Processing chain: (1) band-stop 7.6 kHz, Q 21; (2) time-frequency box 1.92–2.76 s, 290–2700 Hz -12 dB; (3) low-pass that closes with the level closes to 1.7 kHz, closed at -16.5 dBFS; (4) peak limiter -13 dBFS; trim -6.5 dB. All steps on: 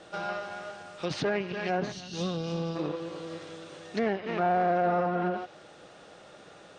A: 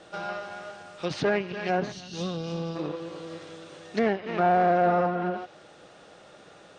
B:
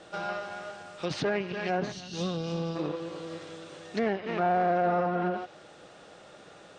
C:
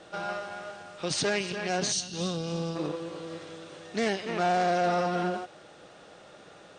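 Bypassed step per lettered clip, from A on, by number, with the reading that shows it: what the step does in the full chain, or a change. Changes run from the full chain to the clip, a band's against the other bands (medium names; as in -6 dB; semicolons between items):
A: 4, crest factor change +2.0 dB; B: 1, momentary loudness spread change +1 LU; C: 3, 8 kHz band +15.0 dB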